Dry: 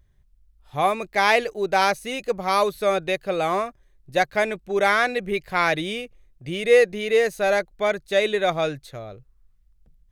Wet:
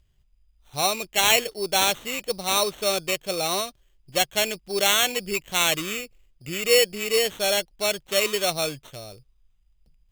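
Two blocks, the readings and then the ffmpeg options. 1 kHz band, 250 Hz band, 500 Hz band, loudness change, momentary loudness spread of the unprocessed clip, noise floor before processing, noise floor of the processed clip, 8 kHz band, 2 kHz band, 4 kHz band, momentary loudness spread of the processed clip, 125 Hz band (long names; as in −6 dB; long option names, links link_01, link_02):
−5.5 dB, −4.0 dB, −4.5 dB, −0.5 dB, 14 LU, −59 dBFS, −63 dBFS, +14.5 dB, −3.0 dB, +8.0 dB, 11 LU, −4.0 dB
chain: -af "acrusher=samples=9:mix=1:aa=0.000001,highshelf=frequency=2200:width_type=q:width=1.5:gain=7,volume=-4dB"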